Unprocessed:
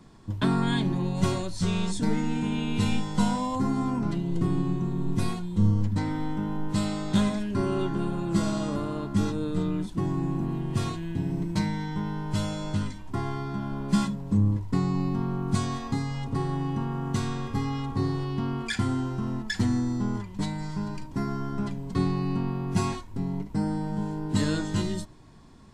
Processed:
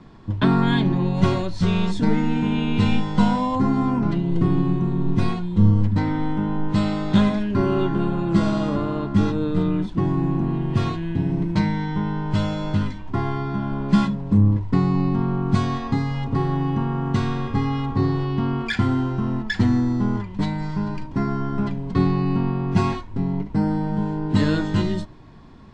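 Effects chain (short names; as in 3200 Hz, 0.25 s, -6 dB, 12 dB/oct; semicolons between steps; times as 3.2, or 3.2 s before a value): LPF 3600 Hz 12 dB/oct; gain +6.5 dB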